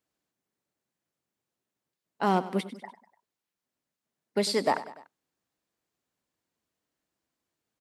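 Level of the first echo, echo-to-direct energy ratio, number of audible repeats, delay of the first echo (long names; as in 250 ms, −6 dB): −15.5 dB, −14.0 dB, 3, 98 ms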